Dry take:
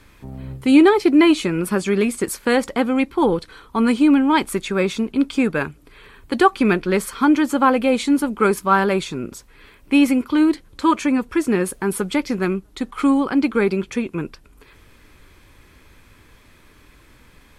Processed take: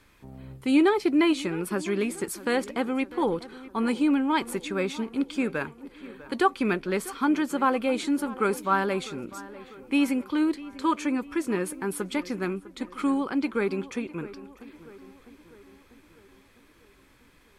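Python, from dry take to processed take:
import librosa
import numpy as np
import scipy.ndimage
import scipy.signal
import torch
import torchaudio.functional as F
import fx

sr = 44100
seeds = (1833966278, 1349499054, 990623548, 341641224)

p1 = fx.low_shelf(x, sr, hz=160.0, db=-5.5)
p2 = p1 + fx.echo_tape(p1, sr, ms=649, feedback_pct=62, wet_db=-15.5, lp_hz=2300.0, drive_db=8.0, wow_cents=35, dry=0)
y = p2 * librosa.db_to_amplitude(-7.5)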